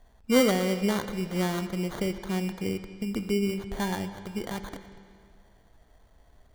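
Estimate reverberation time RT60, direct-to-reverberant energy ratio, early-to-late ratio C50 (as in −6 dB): 2.1 s, 9.5 dB, 10.5 dB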